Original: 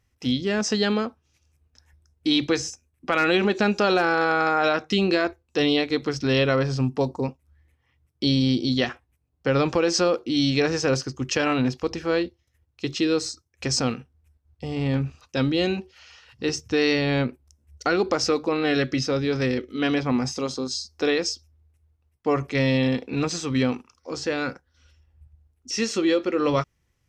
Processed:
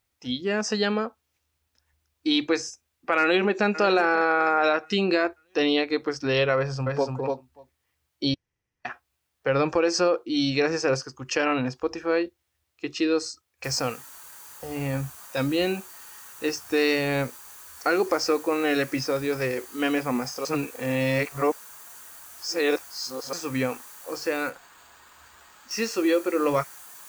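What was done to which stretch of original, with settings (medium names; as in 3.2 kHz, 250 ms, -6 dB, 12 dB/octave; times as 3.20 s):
3.20–3.67 s: echo throw 540 ms, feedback 40%, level -13.5 dB
6.57–7.13 s: echo throw 290 ms, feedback 10%, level -2.5 dB
8.34–8.85 s: room tone
13.64 s: noise floor step -67 dB -41 dB
20.45–23.33 s: reverse
24.49–25.71 s: careless resampling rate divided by 4×, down filtered, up hold
whole clip: spectral noise reduction 9 dB; tone controls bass -5 dB, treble -4 dB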